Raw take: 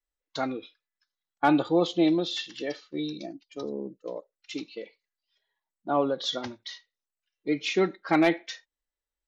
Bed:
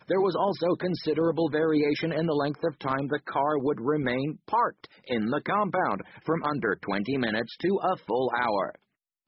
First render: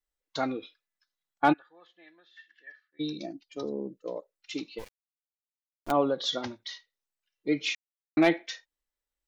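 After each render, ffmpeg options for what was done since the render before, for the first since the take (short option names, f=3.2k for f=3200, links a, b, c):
-filter_complex "[0:a]asplit=3[a][b][c];[a]afade=t=out:st=1.52:d=0.02[d];[b]bandpass=f=1.7k:t=q:w=16,afade=t=in:st=1.52:d=0.02,afade=t=out:st=2.99:d=0.02[e];[c]afade=t=in:st=2.99:d=0.02[f];[d][e][f]amix=inputs=3:normalize=0,asplit=3[g][h][i];[g]afade=t=out:st=4.78:d=0.02[j];[h]acrusher=bits=5:dc=4:mix=0:aa=0.000001,afade=t=in:st=4.78:d=0.02,afade=t=out:st=5.9:d=0.02[k];[i]afade=t=in:st=5.9:d=0.02[l];[j][k][l]amix=inputs=3:normalize=0,asplit=3[m][n][o];[m]atrim=end=7.75,asetpts=PTS-STARTPTS,afade=t=out:st=7.746:d=0.004:c=hsin[p];[n]atrim=start=7.75:end=8.17,asetpts=PTS-STARTPTS,volume=0[q];[o]atrim=start=8.17,asetpts=PTS-STARTPTS,afade=t=in:d=0.004:c=hsin[r];[p][q][r]concat=n=3:v=0:a=1"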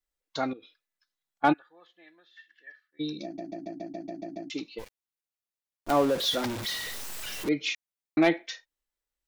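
-filter_complex "[0:a]asettb=1/sr,asplit=3[a][b][c];[a]atrim=end=0.534[d];[b]atrim=start=0.53:end=1.44,asetpts=PTS-STARTPTS,afade=t=in:d=0.004:c=qsin,afade=t=out:st=0.906:d=0.004:c=qsin,acompressor=threshold=-51dB:ratio=2.5:attack=3.2:release=140:knee=1:detection=peak[e];[c]atrim=start=1.436[f];[d][e]acrossfade=d=0.004:c1=hsin:c2=qsin[g];[g][f]acrossfade=d=0.004:c1=qsin:c2=hsin,asettb=1/sr,asplit=3[h][i][j];[h]atrim=end=5.894[k];[i]atrim=start=5.89:end=7.49,asetpts=PTS-STARTPTS,afade=t=in:d=0.004:c=qsin,afade=t=out:st=1.596:d=0.004:c=qsin,aeval=exprs='val(0)+0.5*0.0335*sgn(val(0))':c=same[l];[j]atrim=start=7.486[m];[k][l]acrossfade=d=0.004:c1=hsin:c2=qsin[n];[n][m]acrossfade=d=0.004:c1=qsin:c2=hsin,asplit=10[o][p][q][r][s][t][u][v][w][x];[o]atrim=end=3.382[y];[p]atrim=start=3.238:end=3.382[z];[q]atrim=start=3.238:end=3.382[aa];[r]atrim=start=3.238:end=3.382[ab];[s]atrim=start=3.238:end=3.382[ac];[t]atrim=start=3.238:end=3.382[ad];[u]atrim=start=3.238:end=3.382[ae];[v]atrim=start=3.238:end=3.382[af];[w]atrim=start=3.238:end=3.382[ag];[x]atrim=start=4.498[ah];[y][z]acrossfade=d=0.004:c1=hsin:c2=hsin[ai];[ai][aa]acrossfade=d=0.004:c1=hsin:c2=hsin[aj];[aj][ab]acrossfade=d=0.004:c1=hsin:c2=hsin[ak];[ak][ac]acrossfade=d=0.004:c1=hsin:c2=hsin[al];[al][ad]acrossfade=d=0.004:c1=hsin:c2=hsin[am];[am][ae]acrossfade=d=0.004:c1=hsin:c2=hsin[an];[an][af]acrossfade=d=0.004:c1=hsin:c2=hsin[ao];[ao][ag]acrossfade=d=0.004:c1=hsin:c2=hsin[ap];[ap][ah]acrossfade=d=0.004:c1=hsin:c2=hsin"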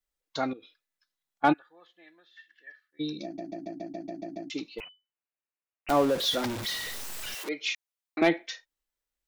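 -filter_complex "[0:a]asettb=1/sr,asplit=3[a][b][c];[a]atrim=end=4.804[d];[b]atrim=start=4.8:end=5.89,asetpts=PTS-STARTPTS,afade=t=in:d=0.004:c=qsin,afade=t=out:st=1.086:d=0.004:c=qsin,lowpass=f=2.6k:t=q:w=0.5098,lowpass=f=2.6k:t=q:w=0.6013,lowpass=f=2.6k:t=q:w=0.9,lowpass=f=2.6k:t=q:w=2.563,afreqshift=-3000[e];[c]atrim=start=5.886[f];[d][e]acrossfade=d=0.004:c1=hsin:c2=qsin[g];[g][f]acrossfade=d=0.004:c1=qsin:c2=hsin,asettb=1/sr,asplit=3[h][i][j];[h]atrim=end=7.344[k];[i]atrim=start=7.34:end=8.22,asetpts=PTS-STARTPTS,afade=t=in:d=0.004:c=qsin,afade=t=out:st=0.876:d=0.004:c=qsin,highpass=530[l];[j]atrim=start=8.216[m];[k][l]acrossfade=d=0.004:c1=hsin:c2=qsin[n];[n][m]acrossfade=d=0.004:c1=qsin:c2=hsin"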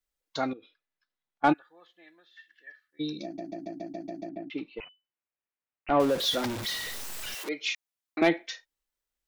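-filter_complex "[0:a]asettb=1/sr,asplit=3[a][b][c];[a]atrim=end=0.544[d];[b]atrim=start=0.54:end=1.52,asetpts=PTS-STARTPTS,afade=t=in:d=0.004:c=qsin,afade=t=out:st=0.976:d=0.004:c=qsin,adynamicsmooth=sensitivity=2:basefreq=3.9k[e];[c]atrim=start=1.516[f];[d][e]acrossfade=d=0.004:c1=hsin:c2=qsin[g];[g][f]acrossfade=d=0.004:c1=qsin:c2=hsin,asettb=1/sr,asplit=3[h][i][j];[h]atrim=end=4.294[k];[i]atrim=start=4.29:end=6,asetpts=PTS-STARTPTS,afade=t=in:d=0.004:c=qsin,afade=t=out:st=1.706:d=0.004:c=qsin,lowpass=f=2.9k:w=0.5412,lowpass=f=2.9k:w=1.3066[l];[j]atrim=start=5.996[m];[k][l]acrossfade=d=0.004:c1=hsin:c2=qsin[n];[n][m]acrossfade=d=0.004:c1=qsin:c2=hsin"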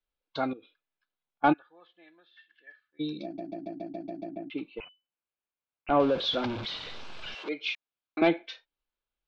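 -af "lowpass=f=3.9k:w=0.5412,lowpass=f=3.9k:w=1.3066,bandreject=f=1.9k:w=5.5"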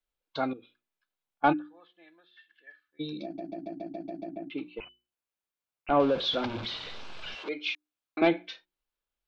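-af "bandreject=f=60:t=h:w=6,bandreject=f=120:t=h:w=6,bandreject=f=180:t=h:w=6,bandreject=f=240:t=h:w=6,bandreject=f=300:t=h:w=6,bandreject=f=360:t=h:w=6"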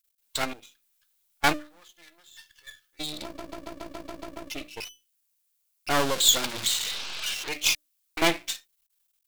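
-af "aeval=exprs='max(val(0),0)':c=same,crystalizer=i=10:c=0"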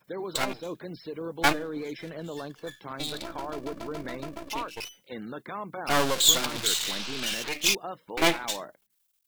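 -filter_complex "[1:a]volume=-11dB[a];[0:a][a]amix=inputs=2:normalize=0"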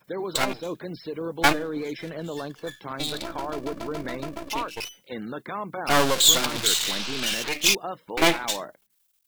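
-af "volume=4dB,alimiter=limit=-3dB:level=0:latency=1"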